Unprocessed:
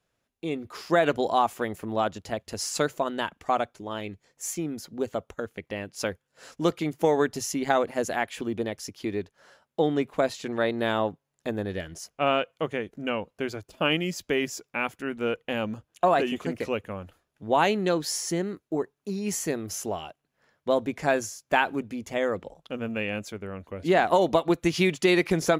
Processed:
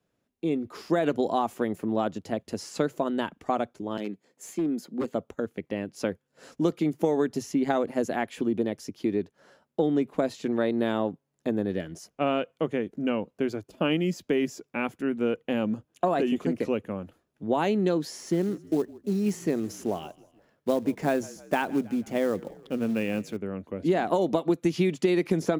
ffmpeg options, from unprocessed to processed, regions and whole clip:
ffmpeg -i in.wav -filter_complex "[0:a]asettb=1/sr,asplit=3[link_01][link_02][link_03];[link_01]atrim=end=3.974[link_04];[link_02]atrim=start=3.97:end=5.13,asetpts=PTS-STARTPTS,afade=type=in:duration=0.004:curve=qsin,afade=type=out:start_time=1.156:duration=0.004:curve=qsin,highpass=frequency=180:width=0.5412,highpass=frequency=180:width=1.3066,aeval=exprs='0.0531*(abs(mod(val(0)/0.0531+3,4)-2)-1)':channel_layout=same,bandreject=frequency=5700:width=12[link_05];[link_03]atrim=start=5.126[link_06];[link_04][link_05]acrossfade=duration=0.004:curve1=hsin:curve2=qsin[link_07];[link_07][link_06]acrossfade=duration=0.004:curve1=qsin:curve2=hsin,asettb=1/sr,asplit=3[link_08][link_09][link_10];[link_08]atrim=end=18.194[link_11];[link_09]atrim=start=18.19:end=23.37,asetpts=PTS-STARTPTS,afade=type=in:duration=0.004:curve=qsin,afade=type=out:start_time=5.176:duration=0.004:curve=qsin,acrusher=bits=4:mode=log:mix=0:aa=0.000001,asplit=4[link_12][link_13][link_14][link_15];[link_13]adelay=159,afreqshift=-37,volume=-23.5dB[link_16];[link_14]adelay=318,afreqshift=-74,volume=-29dB[link_17];[link_15]adelay=477,afreqshift=-111,volume=-34.5dB[link_18];[link_12][link_16][link_17][link_18]amix=inputs=4:normalize=0,atrim=end_sample=228438[link_19];[link_10]atrim=start=23.366[link_20];[link_11][link_19]acrossfade=duration=0.004:curve1=hsin:curve2=qsin[link_21];[link_21][link_20]acrossfade=duration=0.004:curve1=qsin:curve2=hsin,equalizer=frequency=250:width=0.56:gain=11,acrossover=split=98|4200[link_22][link_23][link_24];[link_22]acompressor=threshold=-53dB:ratio=4[link_25];[link_23]acompressor=threshold=-16dB:ratio=4[link_26];[link_24]acompressor=threshold=-40dB:ratio=4[link_27];[link_25][link_26][link_27]amix=inputs=3:normalize=0,volume=-4.5dB" out.wav

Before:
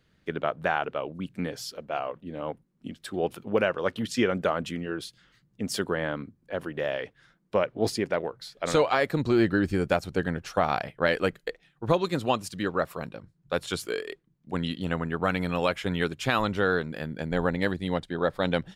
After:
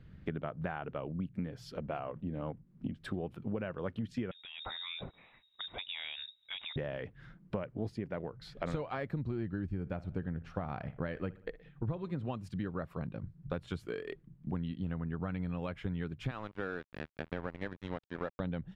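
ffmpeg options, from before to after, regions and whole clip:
ffmpeg -i in.wav -filter_complex "[0:a]asettb=1/sr,asplit=3[link_01][link_02][link_03];[link_01]atrim=end=4.314[link_04];[link_02]atrim=start=4.31:end=6.76,asetpts=PTS-STARTPTS,afade=type=in:duration=0.004:curve=qsin,afade=type=out:start_time=2.446:duration=0.004:curve=qsin,acompressor=threshold=-34dB:ratio=6:attack=3.2:release=140:knee=1:detection=peak,lowpass=frequency=3300:width_type=q:width=0.5098,lowpass=frequency=3300:width_type=q:width=0.6013,lowpass=frequency=3300:width_type=q:width=0.9,lowpass=frequency=3300:width_type=q:width=2.563,afreqshift=-3900[link_05];[link_03]atrim=start=6.756[link_06];[link_04][link_05]acrossfade=duration=0.004:curve1=hsin:curve2=qsin[link_07];[link_07][link_06]acrossfade=duration=0.004:curve1=qsin:curve2=hsin,asettb=1/sr,asplit=3[link_08][link_09][link_10];[link_08]atrim=end=9.694[link_11];[link_09]atrim=start=9.69:end=12.32,asetpts=PTS-STARTPTS,afade=type=in:duration=0.004:curve=qsin,afade=type=out:start_time=2.626:duration=0.004:curve=qsin,highshelf=frequency=5300:gain=-7.5,asplit=2[link_12][link_13];[link_13]adelay=61,lowpass=frequency=4800:poles=1,volume=-20.5dB,asplit=2[link_14][link_15];[link_15]adelay=61,lowpass=frequency=4800:poles=1,volume=0.44,asplit=2[link_16][link_17];[link_17]adelay=61,lowpass=frequency=4800:poles=1,volume=0.44[link_18];[link_12][link_14][link_16][link_18]amix=inputs=4:normalize=0,atrim=end_sample=115983[link_19];[link_10]atrim=start=12.316[link_20];[link_11][link_19]acrossfade=duration=0.004:curve1=hsin:curve2=qsin[link_21];[link_21][link_20]acrossfade=duration=0.004:curve1=qsin:curve2=hsin,asettb=1/sr,asplit=3[link_22][link_23][link_24];[link_22]atrim=end=16.314[link_25];[link_23]atrim=start=16.31:end=18.4,asetpts=PTS-STARTPTS,afade=type=in:duration=0.004:curve=qsin,afade=type=out:start_time=2.086:duration=0.004:curve=qsin,highpass=380,aeval=exprs='sgn(val(0))*max(abs(val(0))-0.0168,0)':channel_layout=same,highshelf=frequency=9500:gain=-11[link_26];[link_24]atrim=start=18.396[link_27];[link_25][link_26]acrossfade=duration=0.004:curve1=hsin:curve2=qsin[link_28];[link_28][link_27]acrossfade=duration=0.004:curve1=qsin:curve2=hsin,bass=frequency=250:gain=14,treble=frequency=4000:gain=-15,acompressor=threshold=-38dB:ratio=6,volume=2.5dB" out.wav

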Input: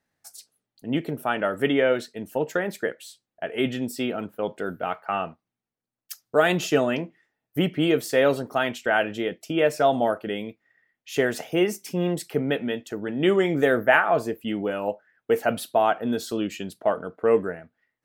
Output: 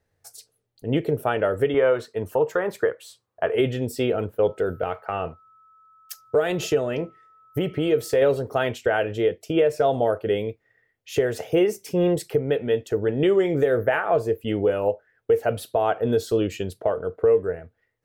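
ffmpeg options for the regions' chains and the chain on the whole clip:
ffmpeg -i in.wav -filter_complex "[0:a]asettb=1/sr,asplit=3[link_01][link_02][link_03];[link_01]atrim=end=1.744[link_04];[link_02]atrim=start=1.74:end=3.55,asetpts=PTS-STARTPTS,afade=type=in:duration=0.004:curve=qsin,afade=type=out:start_time=1.806:duration=0.004:curve=qsin,highpass=58,equalizer=frequency=1100:width=2:gain=15[link_05];[link_03]atrim=start=3.546[link_06];[link_04][link_05]acrossfade=duration=0.004:curve1=hsin:curve2=qsin[link_07];[link_07][link_06]acrossfade=duration=0.004:curve1=qsin:curve2=hsin,asettb=1/sr,asplit=3[link_08][link_09][link_10];[link_08]atrim=end=4.464[link_11];[link_09]atrim=start=4.46:end=8.22,asetpts=PTS-STARTPTS,afade=type=in:duration=0.004:curve=qsin,afade=type=out:start_time=3.756:duration=0.004:curve=qsin,acompressor=threshold=-25dB:ratio=2.5:attack=3.2:release=140:knee=1:detection=peak,aeval=exprs='val(0)+0.00224*sin(2*PI*1300*n/s)':channel_layout=same[link_12];[link_10]atrim=start=8.216[link_13];[link_11][link_12]acrossfade=duration=0.004:curve1=hsin:curve2=qsin[link_14];[link_14][link_13]acrossfade=duration=0.004:curve1=qsin:curve2=hsin,equalizer=frequency=450:width=1.9:gain=12.5,alimiter=limit=-10dB:level=0:latency=1:release=334,lowshelf=frequency=140:width_type=q:width=1.5:gain=13" out.wav

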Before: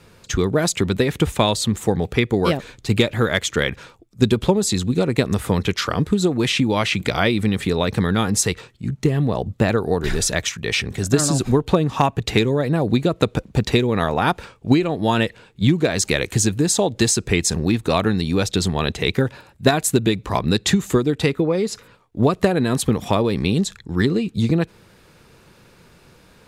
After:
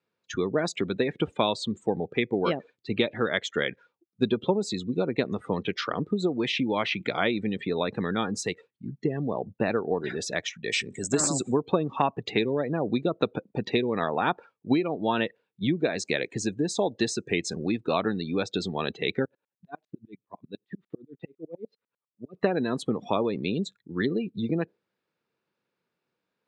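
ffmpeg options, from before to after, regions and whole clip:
ffmpeg -i in.wav -filter_complex "[0:a]asettb=1/sr,asplit=3[link_01][link_02][link_03];[link_01]atrim=end=10.644[link_04];[link_02]atrim=start=10.64:end=11.58,asetpts=PTS-STARTPTS,afade=type=in:duration=0.004:curve=qsin,afade=type=out:start_time=0.936:duration=0.004:curve=qsin,lowpass=frequency=7800:width_type=q:width=8.8,aeval=exprs='clip(val(0),-1,0.473)':channel_layout=same[link_05];[link_03]atrim=start=11.576[link_06];[link_04][link_05]acrossfade=duration=0.004:curve1=hsin:curve2=qsin[link_07];[link_07][link_06]acrossfade=duration=0.004:curve1=qsin:curve2=hsin,asettb=1/sr,asplit=3[link_08][link_09][link_10];[link_08]atrim=end=19.254[link_11];[link_09]atrim=start=19.25:end=22.34,asetpts=PTS-STARTPTS,afade=type=in:duration=0.004:curve=qsin,afade=type=out:start_time=3.086:duration=0.004:curve=qsin,lowpass=frequency=4100:width=0.5412,lowpass=frequency=4100:width=1.3066,acompressor=threshold=-21dB:ratio=2.5:attack=3.2:release=140:knee=1:detection=peak,aeval=exprs='val(0)*pow(10,-37*if(lt(mod(-10*n/s,1),2*abs(-10)/1000),1-mod(-10*n/s,1)/(2*abs(-10)/1000),(mod(-10*n/s,1)-2*abs(-10)/1000)/(1-2*abs(-10)/1000))/20)':channel_layout=same[link_12];[link_10]atrim=start=22.336[link_13];[link_11][link_12]acrossfade=duration=0.004:curve1=hsin:curve2=qsin[link_14];[link_14][link_13]acrossfade=duration=0.004:curve1=qsin:curve2=hsin,highpass=210,afftdn=noise_reduction=24:noise_floor=-30,lowpass=4500,volume=-6dB" out.wav

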